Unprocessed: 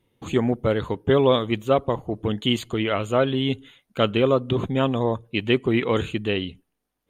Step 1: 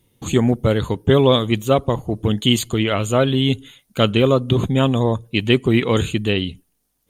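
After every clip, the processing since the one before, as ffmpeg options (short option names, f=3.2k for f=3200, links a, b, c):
-af "bass=f=250:g=6,treble=f=4k:g=13,volume=2.5dB"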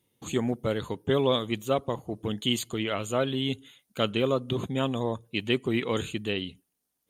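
-af "highpass=f=200:p=1,volume=-9dB"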